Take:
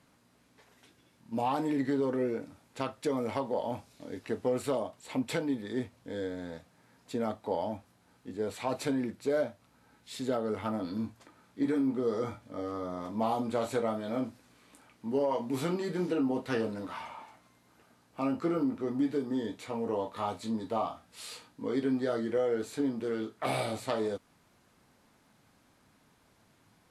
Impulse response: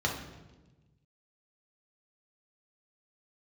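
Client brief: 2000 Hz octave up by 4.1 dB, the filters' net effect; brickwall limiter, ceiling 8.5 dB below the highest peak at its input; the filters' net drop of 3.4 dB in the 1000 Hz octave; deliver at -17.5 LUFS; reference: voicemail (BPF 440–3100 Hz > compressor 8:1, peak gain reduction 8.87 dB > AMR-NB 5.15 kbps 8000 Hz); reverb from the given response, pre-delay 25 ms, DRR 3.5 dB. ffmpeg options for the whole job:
-filter_complex "[0:a]equalizer=f=1k:t=o:g=-6,equalizer=f=2k:t=o:g=8,alimiter=level_in=0.5dB:limit=-24dB:level=0:latency=1,volume=-0.5dB,asplit=2[a][b];[1:a]atrim=start_sample=2205,adelay=25[c];[b][c]afir=irnorm=-1:irlink=0,volume=-12dB[d];[a][d]amix=inputs=2:normalize=0,highpass=440,lowpass=3.1k,acompressor=threshold=-36dB:ratio=8,volume=26dB" -ar 8000 -c:a libopencore_amrnb -b:a 5150

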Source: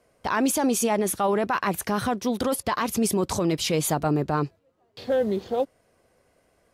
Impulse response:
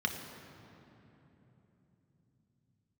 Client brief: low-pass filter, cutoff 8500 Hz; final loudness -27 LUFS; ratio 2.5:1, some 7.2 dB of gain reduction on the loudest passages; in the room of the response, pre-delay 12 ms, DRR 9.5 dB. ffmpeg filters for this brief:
-filter_complex "[0:a]lowpass=8.5k,acompressor=threshold=-30dB:ratio=2.5,asplit=2[a][b];[1:a]atrim=start_sample=2205,adelay=12[c];[b][c]afir=irnorm=-1:irlink=0,volume=-15.5dB[d];[a][d]amix=inputs=2:normalize=0,volume=4dB"

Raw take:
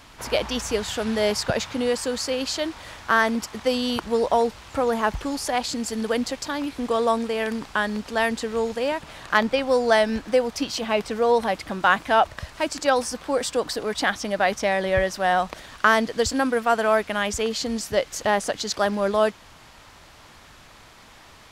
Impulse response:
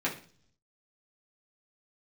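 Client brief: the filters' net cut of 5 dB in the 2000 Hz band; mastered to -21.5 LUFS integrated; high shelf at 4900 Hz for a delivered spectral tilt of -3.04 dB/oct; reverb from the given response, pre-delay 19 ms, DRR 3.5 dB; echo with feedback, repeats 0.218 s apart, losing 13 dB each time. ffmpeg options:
-filter_complex "[0:a]equalizer=f=2k:t=o:g=-8,highshelf=f=4.9k:g=8.5,aecho=1:1:218|436|654:0.224|0.0493|0.0108,asplit=2[a][b];[1:a]atrim=start_sample=2205,adelay=19[c];[b][c]afir=irnorm=-1:irlink=0,volume=-11.5dB[d];[a][d]amix=inputs=2:normalize=0,volume=1dB"

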